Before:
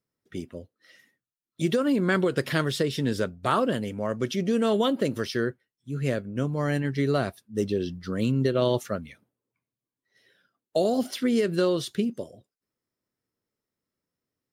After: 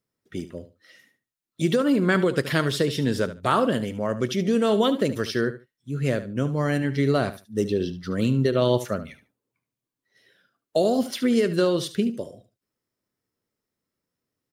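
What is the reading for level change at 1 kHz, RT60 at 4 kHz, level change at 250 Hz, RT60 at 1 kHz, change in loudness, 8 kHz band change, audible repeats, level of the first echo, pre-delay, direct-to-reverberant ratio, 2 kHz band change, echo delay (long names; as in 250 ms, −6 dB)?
+2.5 dB, no reverb audible, +2.5 dB, no reverb audible, +2.5 dB, +2.5 dB, 2, −13.5 dB, no reverb audible, no reverb audible, +2.5 dB, 73 ms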